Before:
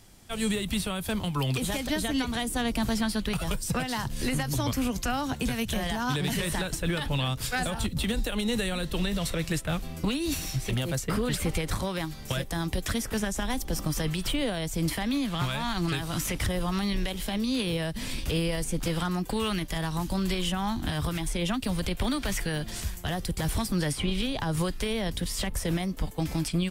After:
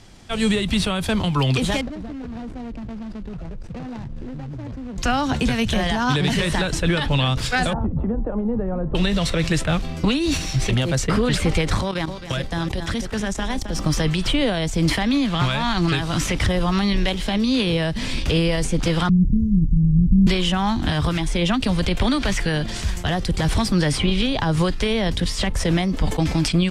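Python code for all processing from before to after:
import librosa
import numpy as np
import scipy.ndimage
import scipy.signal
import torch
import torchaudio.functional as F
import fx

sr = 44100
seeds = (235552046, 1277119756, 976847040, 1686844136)

y = fx.chain(x, sr, fx.median_filter(points=41),
    fx.level_steps(step_db=20), at=(1.81, 4.98))
y = fx.chain(y, sr, fx.lowpass(hz=1000.0, slope=24),
    fx.comb_fb(f0_hz=77.0, decay_s=0.22, harmonics='all', damping=0.0, mix_pct=40),
    fx.band_squash(depth_pct=70), at=(7.73, 8.95))
y = fx.chain(y, sr, fx.level_steps(step_db=16),
    fx.echo_single(ms=266, db=-12.0), at=(11.81, 13.75))
y = fx.chain(y, sr, fx.cvsd(bps=32000),
    fx.cheby2_bandstop(low_hz=780.0, high_hz=3700.0, order=4, stop_db=70),
    fx.low_shelf(hz=350.0, db=9.5), at=(19.09, 20.27))
y = scipy.signal.sosfilt(scipy.signal.butter(2, 5900.0, 'lowpass', fs=sr, output='sos'), y)
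y = fx.sustainer(y, sr, db_per_s=78.0)
y = y * 10.0 ** (8.5 / 20.0)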